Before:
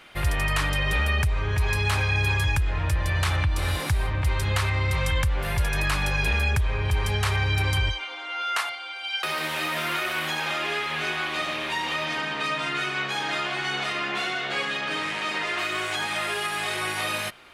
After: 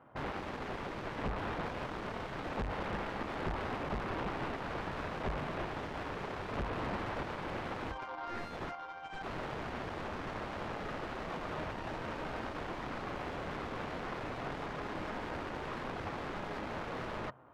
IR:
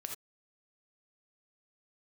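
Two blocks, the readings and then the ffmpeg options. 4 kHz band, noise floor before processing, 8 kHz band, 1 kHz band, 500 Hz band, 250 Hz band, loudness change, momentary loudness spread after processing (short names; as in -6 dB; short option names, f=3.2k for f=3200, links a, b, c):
-21.0 dB, -35 dBFS, -24.0 dB, -9.0 dB, -6.0 dB, -4.5 dB, -14.0 dB, 3 LU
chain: -af "highpass=110,equalizer=f=130:t=q:w=4:g=7,equalizer=f=180:t=q:w=4:g=-10,equalizer=f=370:t=q:w=4:g=-8,equalizer=f=1k:t=q:w=4:g=6,equalizer=f=2.3k:t=q:w=4:g=-9,lowpass=f=2.8k:w=0.5412,lowpass=f=2.8k:w=1.3066,aeval=exprs='(mod(26.6*val(0)+1,2)-1)/26.6':c=same,adynamicsmooth=sensitivity=2:basefreq=620,volume=1dB"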